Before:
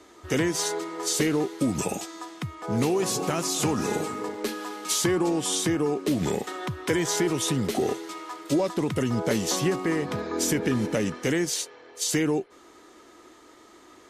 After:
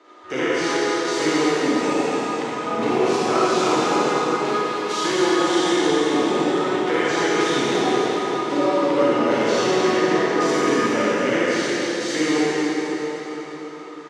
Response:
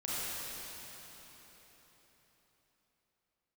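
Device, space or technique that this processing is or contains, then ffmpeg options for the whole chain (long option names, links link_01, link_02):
station announcement: -filter_complex "[0:a]highpass=340,lowpass=3700,equalizer=frequency=1200:width_type=o:width=0.5:gain=4,aecho=1:1:215.7|259.5:0.282|0.316[link_01];[1:a]atrim=start_sample=2205[link_02];[link_01][link_02]afir=irnorm=-1:irlink=0,volume=3.5dB"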